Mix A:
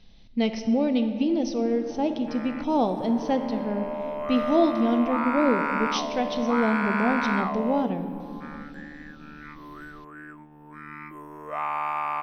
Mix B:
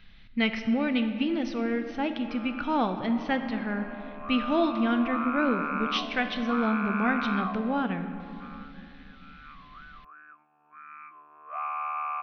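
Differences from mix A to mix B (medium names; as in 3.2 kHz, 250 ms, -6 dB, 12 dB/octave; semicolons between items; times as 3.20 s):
background: add vowel filter a; master: add FFT filter 150 Hz 0 dB, 300 Hz -4 dB, 550 Hz -7 dB, 930 Hz -1 dB, 1.4 kHz +13 dB, 2.4 kHz +8 dB, 4.2 kHz -2 dB, 7.8 kHz -19 dB, 13 kHz +11 dB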